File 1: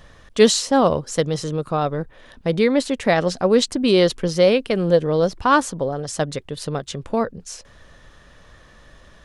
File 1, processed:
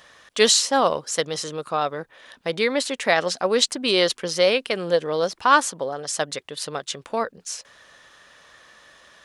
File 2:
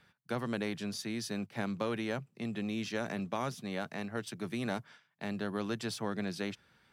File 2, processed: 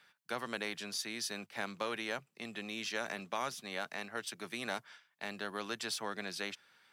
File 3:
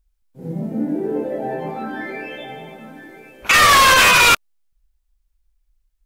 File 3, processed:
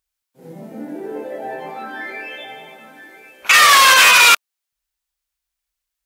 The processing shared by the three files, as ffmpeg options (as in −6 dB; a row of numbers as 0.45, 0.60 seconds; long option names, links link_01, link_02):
-af "highpass=frequency=1100:poles=1,volume=3.5dB"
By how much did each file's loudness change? −2.0, −2.5, +4.5 LU